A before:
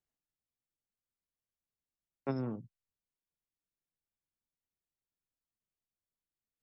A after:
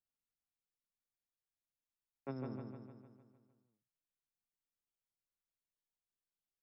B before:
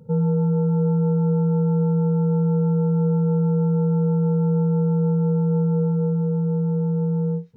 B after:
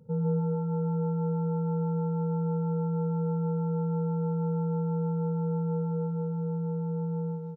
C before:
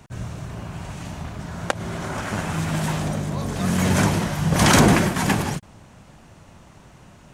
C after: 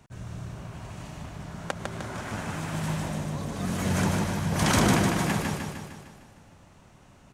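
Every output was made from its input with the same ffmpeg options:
-af "aecho=1:1:152|304|456|608|760|912|1064|1216:0.631|0.36|0.205|0.117|0.0666|0.038|0.0216|0.0123,volume=-8.5dB"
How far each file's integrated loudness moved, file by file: −8.0, −9.0, −6.5 LU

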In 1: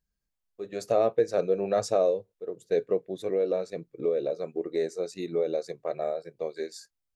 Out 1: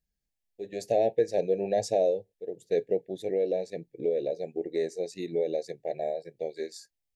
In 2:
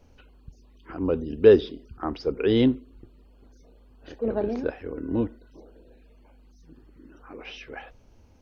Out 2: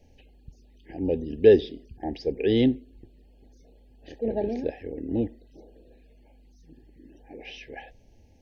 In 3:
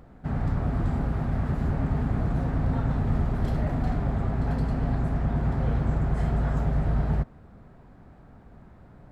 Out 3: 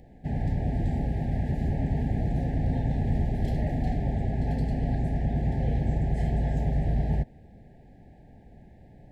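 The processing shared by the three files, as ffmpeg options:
-af "asuperstop=centerf=1200:order=20:qfactor=1.6,volume=-1dB"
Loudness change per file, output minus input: −1.0, −1.0, −1.0 LU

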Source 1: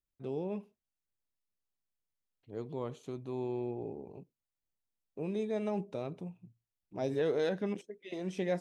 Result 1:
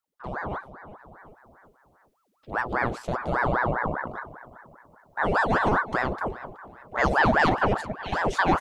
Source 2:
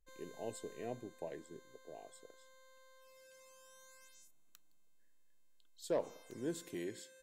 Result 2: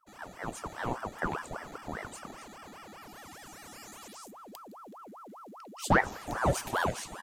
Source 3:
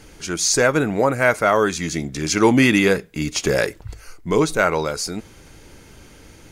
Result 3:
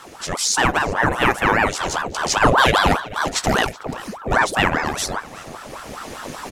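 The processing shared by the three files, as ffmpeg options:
-filter_complex "[0:a]asplit=2[link_01][link_02];[link_02]acompressor=threshold=-32dB:ratio=6,volume=1dB[link_03];[link_01][link_03]amix=inputs=2:normalize=0,asplit=2[link_04][link_05];[link_05]adelay=374,lowpass=frequency=2500:poles=1,volume=-16dB,asplit=2[link_06][link_07];[link_07]adelay=374,lowpass=frequency=2500:poles=1,volume=0.44,asplit=2[link_08][link_09];[link_09]adelay=374,lowpass=frequency=2500:poles=1,volume=0.44,asplit=2[link_10][link_11];[link_11]adelay=374,lowpass=frequency=2500:poles=1,volume=0.44[link_12];[link_04][link_06][link_08][link_10][link_12]amix=inputs=5:normalize=0,dynaudnorm=framelen=350:gausssize=5:maxgain=9dB,aeval=exprs='val(0)*sin(2*PI*780*n/s+780*0.75/5*sin(2*PI*5*n/s))':channel_layout=same"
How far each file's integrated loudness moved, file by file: +11.5, +12.0, 0.0 LU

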